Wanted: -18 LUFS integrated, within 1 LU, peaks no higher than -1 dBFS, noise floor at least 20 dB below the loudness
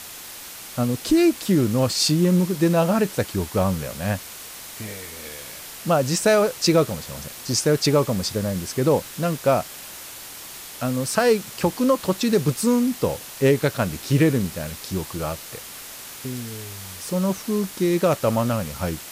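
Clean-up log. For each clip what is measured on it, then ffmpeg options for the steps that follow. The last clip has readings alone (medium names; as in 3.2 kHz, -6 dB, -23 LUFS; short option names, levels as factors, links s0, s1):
noise floor -39 dBFS; noise floor target -42 dBFS; loudness -22.0 LUFS; peak level -7.0 dBFS; loudness target -18.0 LUFS
-> -af "afftdn=nr=6:nf=-39"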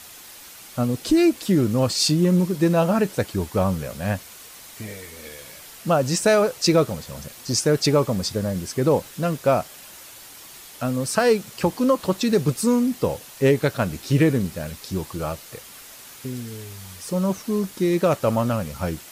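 noise floor -43 dBFS; loudness -22.0 LUFS; peak level -7.5 dBFS; loudness target -18.0 LUFS
-> -af "volume=1.58"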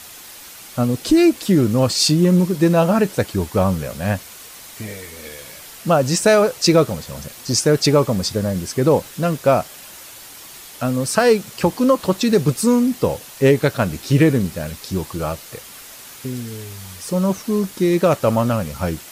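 loudness -18.0 LUFS; peak level -3.5 dBFS; noise floor -39 dBFS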